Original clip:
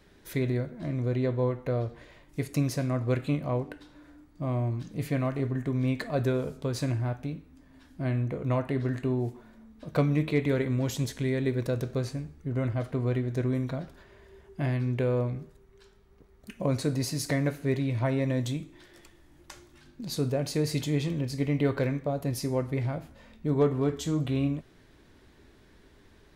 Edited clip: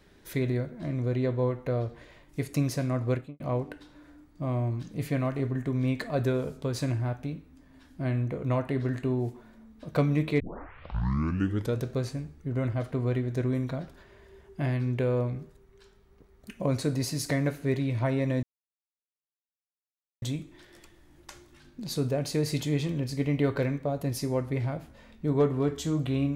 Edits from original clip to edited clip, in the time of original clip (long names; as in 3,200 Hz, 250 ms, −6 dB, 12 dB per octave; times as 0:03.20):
0:03.07–0:03.40: fade out and dull
0:10.40: tape start 1.40 s
0:18.43: splice in silence 1.79 s